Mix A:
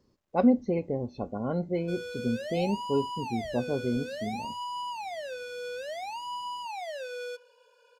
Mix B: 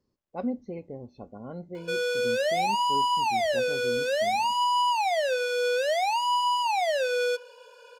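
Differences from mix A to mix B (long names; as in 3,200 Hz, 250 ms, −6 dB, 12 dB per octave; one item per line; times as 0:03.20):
speech −9.0 dB
background +11.5 dB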